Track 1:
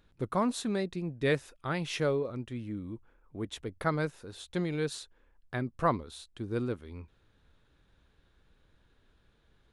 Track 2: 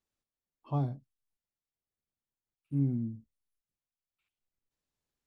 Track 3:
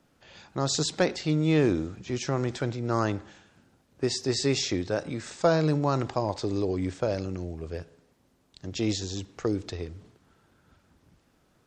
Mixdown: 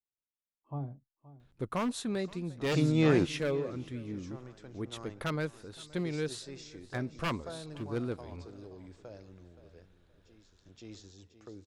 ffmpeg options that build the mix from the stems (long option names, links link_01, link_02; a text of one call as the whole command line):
ffmpeg -i stem1.wav -i stem2.wav -i stem3.wav -filter_complex "[0:a]aeval=exprs='0.0708*(abs(mod(val(0)/0.0708+3,4)-2)-1)':channel_layout=same,adelay=1400,volume=-2dB,asplit=2[link_01][link_02];[link_02]volume=-22dB[link_03];[1:a]lowpass=1800,agate=range=-8dB:threshold=-54dB:ratio=16:detection=peak,volume=-7dB,asplit=3[link_04][link_05][link_06];[link_05]volume=-17.5dB[link_07];[2:a]adelay=1500,volume=-2.5dB,asplit=2[link_08][link_09];[link_09]volume=-18.5dB[link_10];[link_06]apad=whole_len=580456[link_11];[link_08][link_11]sidechaingate=range=-33dB:threshold=-57dB:ratio=16:detection=peak[link_12];[link_03][link_07][link_10]amix=inputs=3:normalize=0,aecho=0:1:523|1046|1569|2092:1|0.22|0.0484|0.0106[link_13];[link_01][link_04][link_12][link_13]amix=inputs=4:normalize=0" out.wav